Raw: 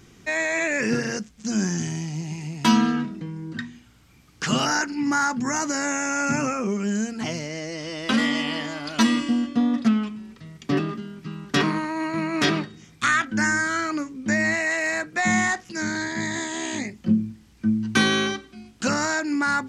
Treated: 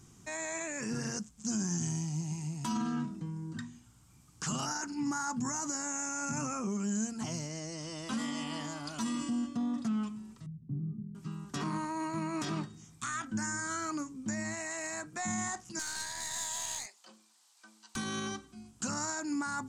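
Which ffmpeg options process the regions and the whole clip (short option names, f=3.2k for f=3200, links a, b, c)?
-filter_complex "[0:a]asettb=1/sr,asplit=3[a][b][c];[a]atrim=end=10.464[d];[b]atrim=start=10.46:end=11.15,asetpts=PTS-STARTPTS,afade=t=in:d=0.004:c=qsin,afade=t=out:st=0.686:d=0.004:c=qsin,acompressor=threshold=-27dB:ratio=4:attack=3.2:release=140:knee=1:detection=peak,lowpass=f=160:t=q:w=1.7,asplit=2[e][f];[f]adelay=42,volume=-13.5dB[g];[e][g]amix=inputs=2:normalize=0,atrim=end_sample=30429[h];[c]atrim=start=11.146[i];[d][h]acrossfade=d=0.004:c1=hsin:c2=qsin[j];[j][i]acrossfade=d=0.004:c1=qsin:c2=hsin,asettb=1/sr,asplit=3[k][l][m];[k]atrim=end=15.794[n];[l]atrim=start=15.79:end=17.96,asetpts=PTS-STARTPTS,afade=t=in:d=0.004:c=qsin,afade=t=out:st=2.166:d=0.004:c=qsin,highpass=f=620:w=0.5412,highpass=f=620:w=1.3066,equalizer=f=4.1k:t=o:w=0.69:g=8.5,aeval=exprs='clip(val(0),-1,0.0266)':c=same[o];[m]atrim=start=17.956[p];[n][o]acrossfade=d=0.004:c1=hsin:c2=qsin[q];[q][p]acrossfade=d=0.004:c1=qsin:c2=hsin,alimiter=limit=-18.5dB:level=0:latency=1:release=39,equalizer=f=125:t=o:w=1:g=5,equalizer=f=500:t=o:w=1:g=-6,equalizer=f=1k:t=o:w=1:g=5,equalizer=f=2k:t=o:w=1:g=-8,equalizer=f=4k:t=o:w=1:g=-4,equalizer=f=8k:t=o:w=1:g=11,volume=-8dB"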